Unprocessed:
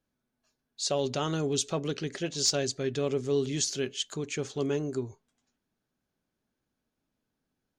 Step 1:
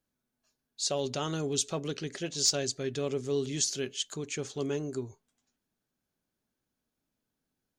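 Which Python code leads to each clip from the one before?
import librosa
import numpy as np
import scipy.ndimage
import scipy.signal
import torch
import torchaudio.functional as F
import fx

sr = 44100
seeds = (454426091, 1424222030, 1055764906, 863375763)

y = fx.high_shelf(x, sr, hz=5600.0, db=6.5)
y = y * librosa.db_to_amplitude(-3.0)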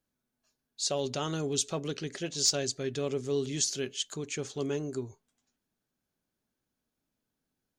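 y = x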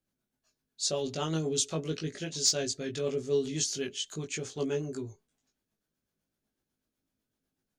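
y = fx.rotary(x, sr, hz=8.0)
y = fx.doubler(y, sr, ms=19.0, db=-3)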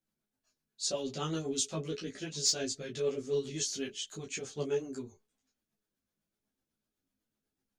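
y = fx.ensemble(x, sr)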